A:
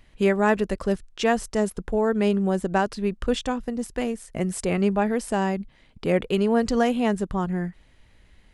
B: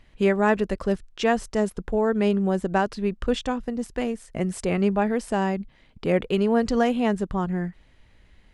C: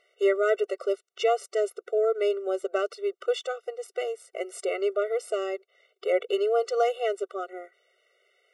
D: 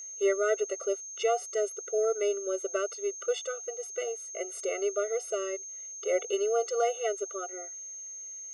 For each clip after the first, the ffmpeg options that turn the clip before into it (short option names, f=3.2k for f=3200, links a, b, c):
-af "highshelf=f=9.3k:g=-10.5"
-filter_complex "[0:a]acrossover=split=110|1600[a][b][c];[a]acompressor=threshold=-48dB:ratio=5[d];[d][b][c]amix=inputs=3:normalize=0,afftfilt=real='re*eq(mod(floor(b*sr/1024/380),2),1)':imag='im*eq(mod(floor(b*sr/1024/380),2),1)':win_size=1024:overlap=0.75"
-af "asuperstop=centerf=780:order=20:qfactor=7.5,aeval=exprs='val(0)+0.0158*sin(2*PI*6400*n/s)':c=same,volume=-3.5dB"